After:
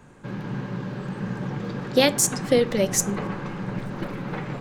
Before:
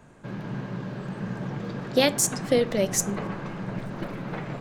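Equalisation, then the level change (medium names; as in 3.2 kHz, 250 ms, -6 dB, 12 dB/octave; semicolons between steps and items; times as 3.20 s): Butterworth band-stop 650 Hz, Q 7.6; +2.5 dB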